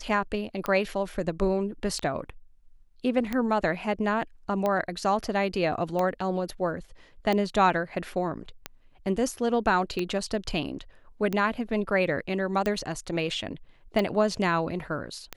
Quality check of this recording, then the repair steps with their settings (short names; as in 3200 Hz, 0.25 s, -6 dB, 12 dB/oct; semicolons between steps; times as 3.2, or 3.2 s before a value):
tick 45 rpm -15 dBFS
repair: de-click